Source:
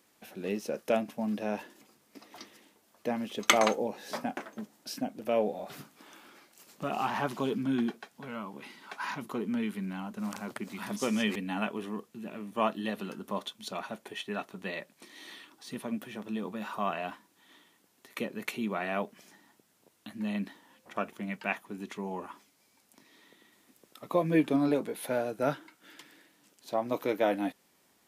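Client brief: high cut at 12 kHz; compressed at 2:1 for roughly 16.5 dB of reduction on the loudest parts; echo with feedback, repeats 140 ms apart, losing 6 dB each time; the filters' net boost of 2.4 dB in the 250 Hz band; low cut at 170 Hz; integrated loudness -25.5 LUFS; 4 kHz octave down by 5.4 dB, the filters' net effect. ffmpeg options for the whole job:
-af "highpass=170,lowpass=12000,equalizer=f=250:t=o:g=4,equalizer=f=4000:t=o:g=-7.5,acompressor=threshold=0.00316:ratio=2,aecho=1:1:140|280|420|560|700|840:0.501|0.251|0.125|0.0626|0.0313|0.0157,volume=8.91"

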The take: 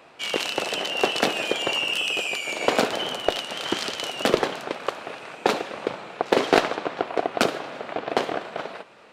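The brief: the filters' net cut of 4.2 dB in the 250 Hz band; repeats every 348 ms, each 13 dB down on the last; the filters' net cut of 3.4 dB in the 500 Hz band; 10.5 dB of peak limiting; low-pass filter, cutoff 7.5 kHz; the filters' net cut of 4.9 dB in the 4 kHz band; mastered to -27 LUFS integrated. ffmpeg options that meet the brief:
-af "lowpass=7500,equalizer=f=250:t=o:g=-4.5,equalizer=f=500:t=o:g=-3,equalizer=f=4000:t=o:g=-7.5,alimiter=limit=0.133:level=0:latency=1,aecho=1:1:348|696|1044:0.224|0.0493|0.0108,volume=1.58"

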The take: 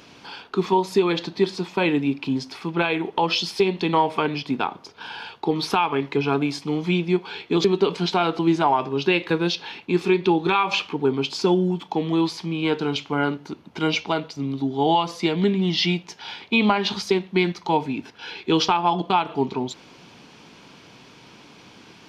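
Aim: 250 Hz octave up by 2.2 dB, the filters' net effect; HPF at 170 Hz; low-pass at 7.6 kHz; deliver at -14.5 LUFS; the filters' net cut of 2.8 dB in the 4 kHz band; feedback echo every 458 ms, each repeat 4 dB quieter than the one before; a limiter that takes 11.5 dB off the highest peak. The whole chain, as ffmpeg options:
-af "highpass=170,lowpass=7600,equalizer=f=250:t=o:g=4.5,equalizer=f=4000:t=o:g=-3.5,alimiter=limit=0.133:level=0:latency=1,aecho=1:1:458|916|1374|1832|2290|2748|3206|3664|4122:0.631|0.398|0.25|0.158|0.0994|0.0626|0.0394|0.0249|0.0157,volume=3.55"

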